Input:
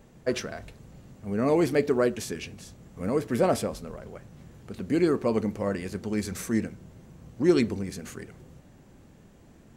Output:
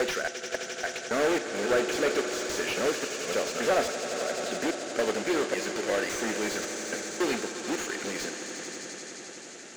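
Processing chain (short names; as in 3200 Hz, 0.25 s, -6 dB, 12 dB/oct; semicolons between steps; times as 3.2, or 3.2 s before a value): slices in reverse order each 0.277 s, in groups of 2; high shelf 3200 Hz +7 dB; in parallel at +3 dB: compressor, threshold -34 dBFS, peak gain reduction 17.5 dB; on the sum: hard clip -20 dBFS, distortion -10 dB; overdrive pedal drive 4 dB, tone 4100 Hz, clips at -20 dBFS; companded quantiser 4-bit; speaker cabinet 400–8100 Hz, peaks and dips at 1000 Hz -10 dB, 1500 Hz +3 dB, 6800 Hz +8 dB; swelling echo 87 ms, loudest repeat 5, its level -14.5 dB; on a send at -17.5 dB: reverb RT60 0.35 s, pre-delay 38 ms; on the sum: slew limiter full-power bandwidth 70 Hz; gain +3.5 dB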